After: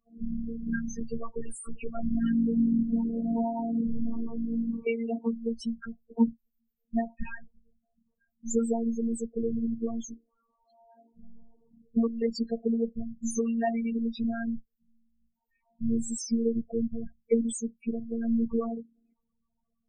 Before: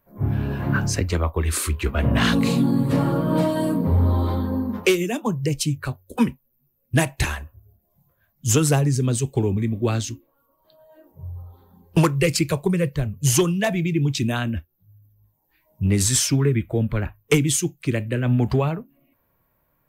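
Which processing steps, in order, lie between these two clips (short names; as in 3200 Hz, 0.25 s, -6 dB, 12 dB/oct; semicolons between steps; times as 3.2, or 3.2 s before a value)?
loudest bins only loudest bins 8; robotiser 230 Hz; gain -3.5 dB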